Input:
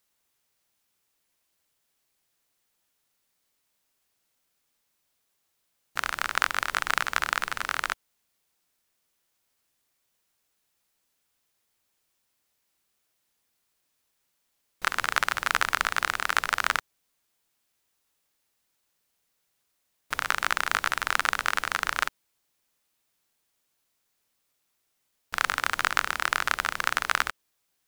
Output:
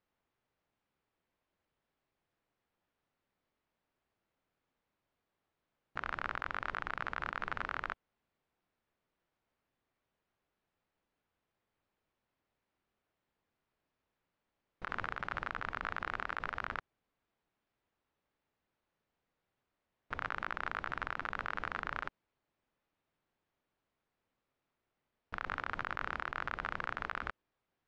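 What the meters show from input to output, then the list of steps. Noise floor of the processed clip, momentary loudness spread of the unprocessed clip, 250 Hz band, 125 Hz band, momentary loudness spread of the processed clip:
under -85 dBFS, 6 LU, -4.0 dB, -2.5 dB, 4 LU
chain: compressor with a negative ratio -29 dBFS, ratio -1; peak limiter -12 dBFS, peak gain reduction 6.5 dB; tape spacing loss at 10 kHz 41 dB

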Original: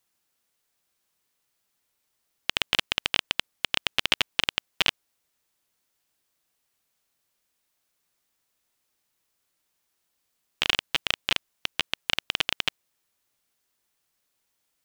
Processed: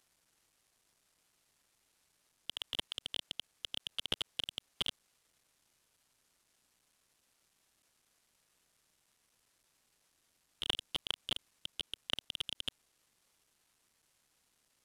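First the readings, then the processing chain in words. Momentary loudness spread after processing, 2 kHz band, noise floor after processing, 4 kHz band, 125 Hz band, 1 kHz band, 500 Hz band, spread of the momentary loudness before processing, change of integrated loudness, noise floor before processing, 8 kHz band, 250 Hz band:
6 LU, -20.0 dB, -78 dBFS, -11.0 dB, -10.0 dB, -16.5 dB, -12.0 dB, 6 LU, -12.5 dB, -77 dBFS, -12.5 dB, -11.0 dB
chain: CVSD coder 64 kbps; trim +3 dB

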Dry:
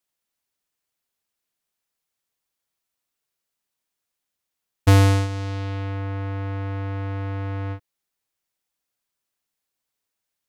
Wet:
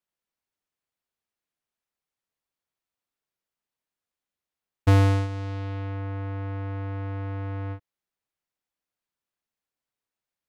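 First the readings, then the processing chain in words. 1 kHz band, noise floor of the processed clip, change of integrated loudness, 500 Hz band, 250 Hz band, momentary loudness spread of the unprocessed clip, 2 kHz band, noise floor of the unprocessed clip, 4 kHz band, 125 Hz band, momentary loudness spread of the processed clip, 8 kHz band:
-4.0 dB, under -85 dBFS, -3.5 dB, -3.5 dB, -3.5 dB, 13 LU, -5.5 dB, -83 dBFS, -8.0 dB, -3.5 dB, 13 LU, under -10 dB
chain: treble shelf 3.8 kHz -9.5 dB; trim -3.5 dB

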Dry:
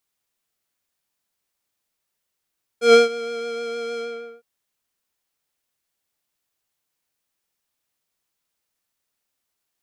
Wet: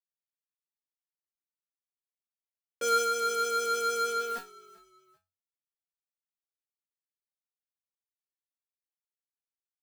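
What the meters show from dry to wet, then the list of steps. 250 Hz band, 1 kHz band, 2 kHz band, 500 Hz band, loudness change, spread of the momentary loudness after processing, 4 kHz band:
-19.5 dB, -0.5 dB, -6.5 dB, -12.5 dB, -8.0 dB, 8 LU, -6.0 dB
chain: compression, threshold -16 dBFS, peak gain reduction 6.5 dB; small samples zeroed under -48.5 dBFS; power-law waveshaper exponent 0.35; chord resonator F#3 fifth, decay 0.24 s; on a send: frequency-shifting echo 391 ms, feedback 35%, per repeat -46 Hz, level -22 dB; on the sum: trim +7.5 dB

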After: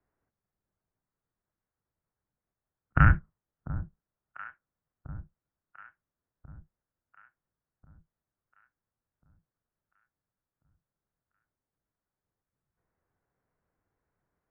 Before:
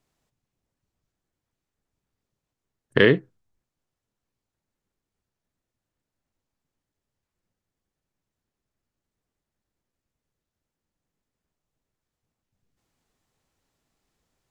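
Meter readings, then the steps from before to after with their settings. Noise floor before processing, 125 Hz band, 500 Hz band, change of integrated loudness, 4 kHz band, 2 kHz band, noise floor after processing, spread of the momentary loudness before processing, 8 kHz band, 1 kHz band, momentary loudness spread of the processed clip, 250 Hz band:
under -85 dBFS, +5.0 dB, -25.5 dB, -6.5 dB, under -25 dB, -5.5 dB, under -85 dBFS, 9 LU, no reading, +8.0 dB, 23 LU, -7.5 dB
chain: echo whose repeats swap between lows and highs 695 ms, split 1.2 kHz, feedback 63%, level -13 dB; mistuned SSB -340 Hz 200–2200 Hz; trim -2 dB

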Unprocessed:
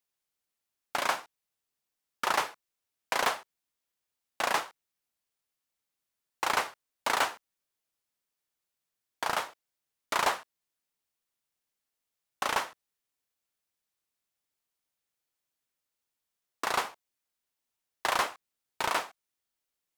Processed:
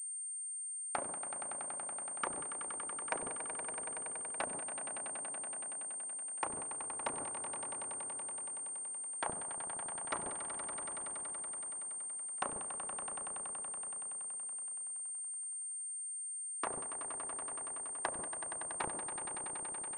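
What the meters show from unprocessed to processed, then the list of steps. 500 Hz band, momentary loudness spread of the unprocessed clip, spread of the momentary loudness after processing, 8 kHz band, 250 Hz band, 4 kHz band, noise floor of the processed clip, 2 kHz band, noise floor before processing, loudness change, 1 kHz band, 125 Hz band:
-7.0 dB, 11 LU, 2 LU, +9.0 dB, -3.0 dB, -17.5 dB, -43 dBFS, -13.0 dB, under -85 dBFS, -7.5 dB, -10.5 dB, -2.0 dB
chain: low-pass that closes with the level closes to 310 Hz, closed at -26.5 dBFS; echo with a slow build-up 94 ms, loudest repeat 5, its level -11 dB; class-D stage that switches slowly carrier 8.7 kHz; trim -4.5 dB

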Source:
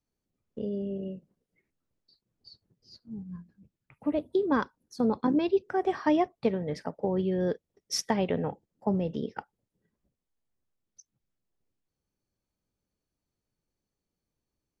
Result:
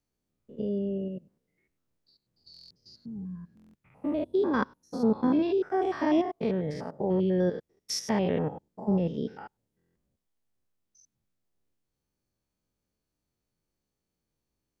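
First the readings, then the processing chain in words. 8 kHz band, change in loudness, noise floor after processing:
-1.5 dB, +1.0 dB, -85 dBFS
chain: spectrogram pixelated in time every 100 ms; buffer glitch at 2.52/3.55/9.77 s, samples 1024, times 7; trim +3 dB

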